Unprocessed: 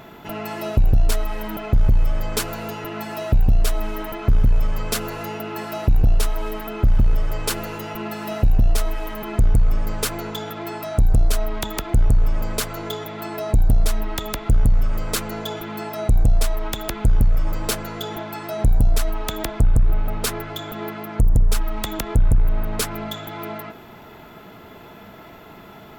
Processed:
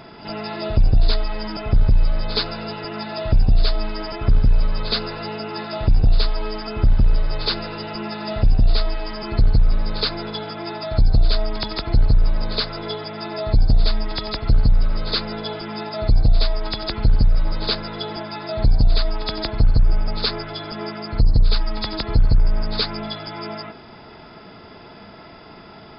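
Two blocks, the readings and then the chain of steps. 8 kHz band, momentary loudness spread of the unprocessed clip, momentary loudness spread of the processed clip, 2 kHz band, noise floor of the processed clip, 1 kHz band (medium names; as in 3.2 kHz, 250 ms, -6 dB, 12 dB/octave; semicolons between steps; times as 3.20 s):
under -40 dB, 11 LU, 11 LU, +0.5 dB, -42 dBFS, 0.0 dB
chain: knee-point frequency compression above 3.4 kHz 4:1; pre-echo 70 ms -13 dB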